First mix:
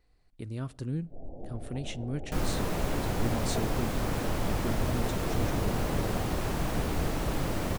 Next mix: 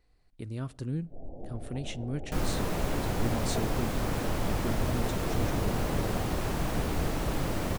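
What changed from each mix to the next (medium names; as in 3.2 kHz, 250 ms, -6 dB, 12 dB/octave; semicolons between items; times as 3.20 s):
no change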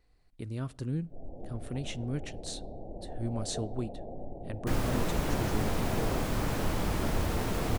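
first sound: send off; second sound: entry +2.35 s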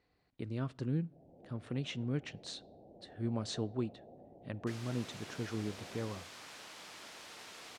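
first sound -12.0 dB; second sound: add differentiator; master: add band-pass 120–4500 Hz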